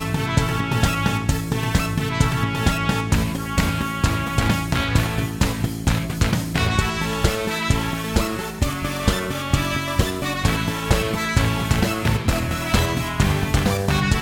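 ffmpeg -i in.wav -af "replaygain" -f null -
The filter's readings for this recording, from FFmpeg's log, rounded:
track_gain = +3.9 dB
track_peak = 0.405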